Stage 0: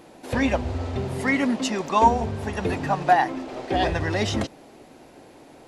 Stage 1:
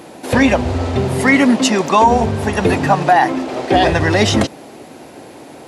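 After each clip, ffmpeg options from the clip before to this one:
-af "highpass=82,equalizer=f=10k:w=1.5:g=3,alimiter=level_in=12.5dB:limit=-1dB:release=50:level=0:latency=1,volume=-1dB"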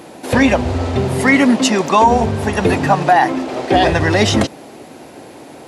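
-af anull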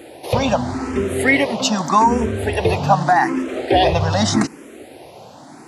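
-filter_complex "[0:a]asplit=2[a][b];[b]afreqshift=0.83[c];[a][c]amix=inputs=2:normalize=1"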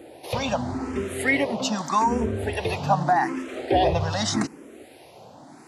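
-filter_complex "[0:a]acrossover=split=1100[a][b];[a]aeval=exprs='val(0)*(1-0.5/2+0.5/2*cos(2*PI*1.3*n/s))':c=same[c];[b]aeval=exprs='val(0)*(1-0.5/2-0.5/2*cos(2*PI*1.3*n/s))':c=same[d];[c][d]amix=inputs=2:normalize=0,volume=-4.5dB"

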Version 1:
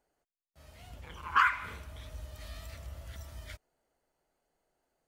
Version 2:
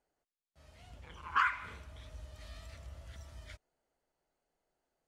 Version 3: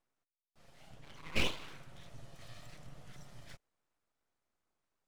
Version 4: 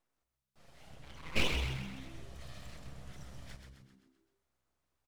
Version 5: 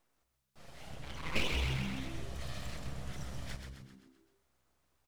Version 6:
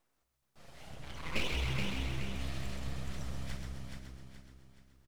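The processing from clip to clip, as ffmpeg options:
-af "lowpass=9k,volume=-4.5dB"
-af "aeval=exprs='abs(val(0))':c=same"
-filter_complex "[0:a]asplit=7[a][b][c][d][e][f][g];[b]adelay=130,afreqshift=-66,volume=-6dB[h];[c]adelay=260,afreqshift=-132,volume=-11.7dB[i];[d]adelay=390,afreqshift=-198,volume=-17.4dB[j];[e]adelay=520,afreqshift=-264,volume=-23dB[k];[f]adelay=650,afreqshift=-330,volume=-28.7dB[l];[g]adelay=780,afreqshift=-396,volume=-34.4dB[m];[a][h][i][j][k][l][m]amix=inputs=7:normalize=0,volume=1dB"
-af "acompressor=threshold=-37dB:ratio=3,volume=7dB"
-af "aecho=1:1:424|848|1272|1696|2120:0.562|0.219|0.0855|0.0334|0.013,volume=-1.5dB"

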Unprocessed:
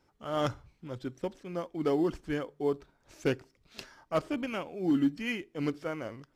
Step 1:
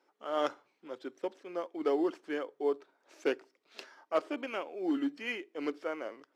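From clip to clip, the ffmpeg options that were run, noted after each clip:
-af "highpass=f=320:w=0.5412,highpass=f=320:w=1.3066,highshelf=f=5.9k:g=-10.5"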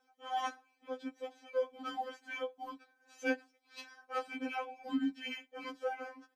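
-af "aecho=1:1:6.5:0.8,afftfilt=real='re*3.46*eq(mod(b,12),0)':imag='im*3.46*eq(mod(b,12),0)':win_size=2048:overlap=0.75"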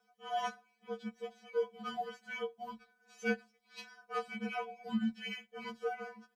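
-af "afreqshift=-48"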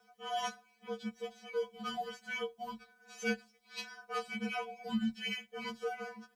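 -filter_complex "[0:a]acrossover=split=130|3000[a][b][c];[b]acompressor=threshold=-57dB:ratio=1.5[d];[a][d][c]amix=inputs=3:normalize=0,volume=7.5dB"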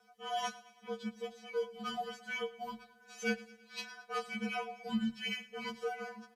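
-af "aresample=32000,aresample=44100,aecho=1:1:110|220|330|440|550:0.106|0.0593|0.0332|0.0186|0.0104"

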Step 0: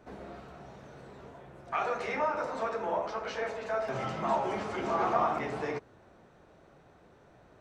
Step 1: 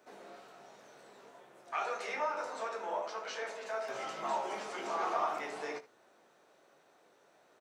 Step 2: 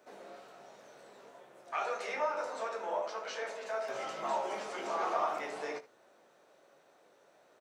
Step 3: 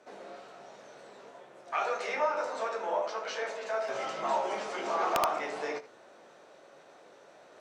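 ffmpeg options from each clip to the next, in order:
-filter_complex "[0:a]highpass=360,highshelf=f=3.9k:g=11.5,asplit=2[a][b];[b]aecho=0:1:20|75:0.376|0.141[c];[a][c]amix=inputs=2:normalize=0,volume=-6dB"
-af "equalizer=f=560:t=o:w=0.37:g=4.5"
-af "lowpass=7.9k,areverse,acompressor=mode=upward:threshold=-52dB:ratio=2.5,areverse,aeval=exprs='(mod(11.2*val(0)+1,2)-1)/11.2':c=same,volume=4dB"

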